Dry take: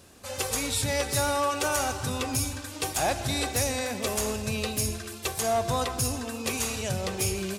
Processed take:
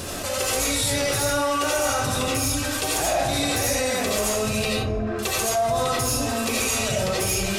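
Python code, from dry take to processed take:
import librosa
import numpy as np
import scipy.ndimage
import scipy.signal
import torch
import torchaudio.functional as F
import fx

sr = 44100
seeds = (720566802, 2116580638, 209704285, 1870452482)

y = fx.lowpass(x, sr, hz=1100.0, slope=12, at=(4.72, 5.19))
y = fx.rev_freeverb(y, sr, rt60_s=0.44, hf_ratio=0.6, predelay_ms=45, drr_db=-6.5)
y = fx.env_flatten(y, sr, amount_pct=70)
y = y * 10.0 ** (-8.0 / 20.0)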